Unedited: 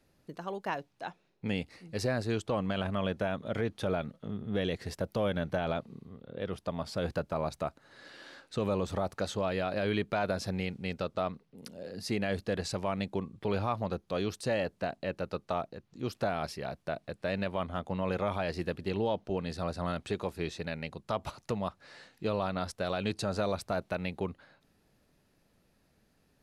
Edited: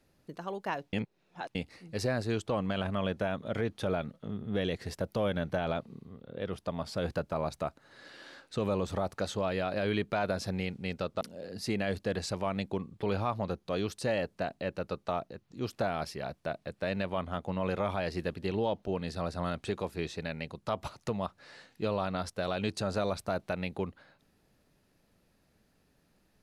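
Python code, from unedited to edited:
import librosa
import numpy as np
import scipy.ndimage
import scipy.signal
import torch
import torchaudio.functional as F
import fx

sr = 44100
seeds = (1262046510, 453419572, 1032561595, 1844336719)

y = fx.edit(x, sr, fx.reverse_span(start_s=0.93, length_s=0.62),
    fx.cut(start_s=11.21, length_s=0.42), tone=tone)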